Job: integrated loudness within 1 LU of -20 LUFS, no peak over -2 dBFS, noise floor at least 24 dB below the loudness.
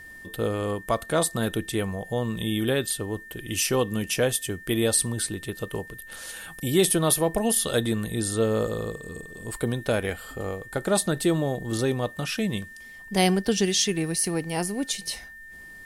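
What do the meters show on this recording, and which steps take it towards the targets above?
steady tone 1800 Hz; tone level -42 dBFS; loudness -26.0 LUFS; peak -8.5 dBFS; loudness target -20.0 LUFS
-> notch 1800 Hz, Q 30; gain +6 dB

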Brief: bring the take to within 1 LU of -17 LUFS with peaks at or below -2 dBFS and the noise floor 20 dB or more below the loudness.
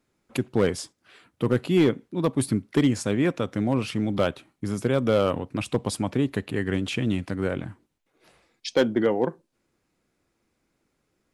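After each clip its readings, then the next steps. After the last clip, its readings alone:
clipped 0.3%; flat tops at -12.5 dBFS; loudness -25.5 LUFS; peak -12.5 dBFS; loudness target -17.0 LUFS
-> clip repair -12.5 dBFS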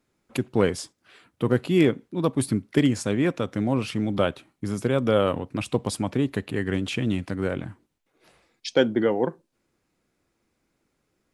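clipped 0.0%; loudness -25.5 LUFS; peak -6.0 dBFS; loudness target -17.0 LUFS
-> gain +8.5 dB; limiter -2 dBFS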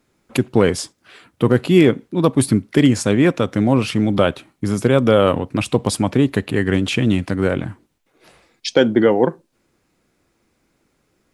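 loudness -17.5 LUFS; peak -2.0 dBFS; noise floor -67 dBFS

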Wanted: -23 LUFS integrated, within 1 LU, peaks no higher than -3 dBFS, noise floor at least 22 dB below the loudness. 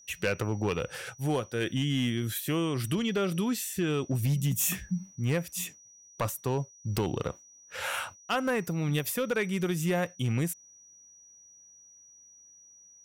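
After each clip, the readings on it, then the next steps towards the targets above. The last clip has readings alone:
clipped 0.8%; flat tops at -21.5 dBFS; steady tone 5800 Hz; tone level -53 dBFS; loudness -30.5 LUFS; peak -21.5 dBFS; loudness target -23.0 LUFS
-> clip repair -21.5 dBFS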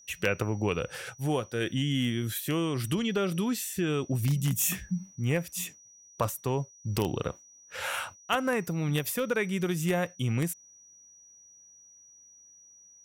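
clipped 0.0%; steady tone 5800 Hz; tone level -53 dBFS
-> notch 5800 Hz, Q 30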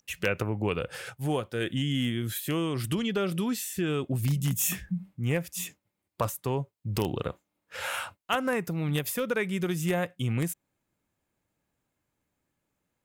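steady tone none; loudness -30.5 LUFS; peak -12.5 dBFS; loudness target -23.0 LUFS
-> gain +7.5 dB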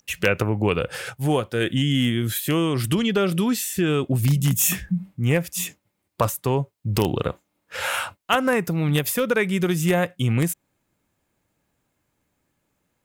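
loudness -23.0 LUFS; peak -5.0 dBFS; noise floor -75 dBFS

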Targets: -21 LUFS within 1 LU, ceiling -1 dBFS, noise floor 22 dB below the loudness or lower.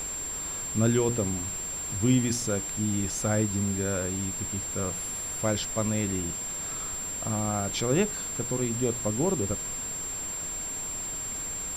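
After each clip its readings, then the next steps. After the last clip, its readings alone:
steady tone 7400 Hz; tone level -32 dBFS; noise floor -34 dBFS; noise floor target -51 dBFS; loudness -28.5 LUFS; peak -11.5 dBFS; loudness target -21.0 LUFS
-> notch 7400 Hz, Q 30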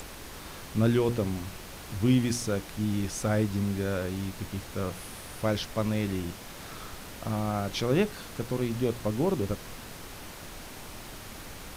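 steady tone none; noise floor -44 dBFS; noise floor target -52 dBFS
-> noise print and reduce 8 dB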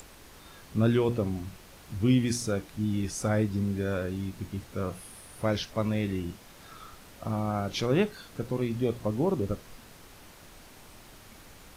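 noise floor -52 dBFS; loudness -30.0 LUFS; peak -12.0 dBFS; loudness target -21.0 LUFS
-> gain +9 dB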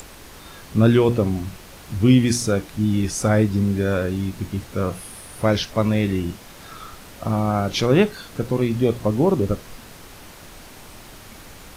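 loudness -21.0 LUFS; peak -3.0 dBFS; noise floor -43 dBFS

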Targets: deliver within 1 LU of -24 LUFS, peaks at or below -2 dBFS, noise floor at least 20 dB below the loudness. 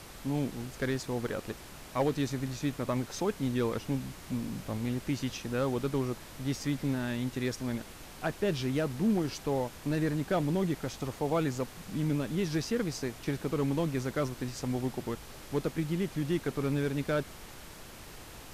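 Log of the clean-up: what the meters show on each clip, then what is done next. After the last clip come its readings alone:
clipped 0.2%; flat tops at -20.5 dBFS; noise floor -48 dBFS; noise floor target -53 dBFS; loudness -33.0 LUFS; peak -20.5 dBFS; loudness target -24.0 LUFS
-> clip repair -20.5 dBFS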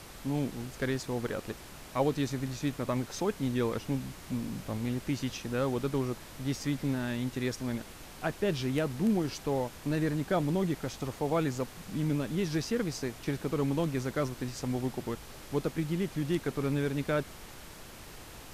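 clipped 0.0%; noise floor -48 dBFS; noise floor target -53 dBFS
-> noise print and reduce 6 dB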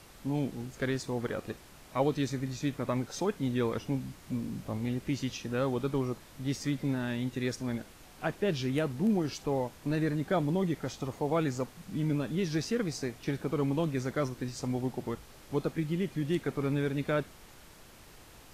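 noise floor -54 dBFS; loudness -33.0 LUFS; peak -14.5 dBFS; loudness target -24.0 LUFS
-> gain +9 dB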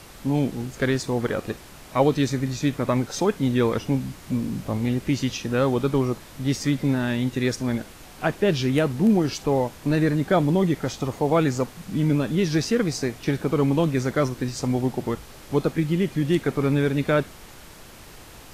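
loudness -24.0 LUFS; peak -5.5 dBFS; noise floor -45 dBFS

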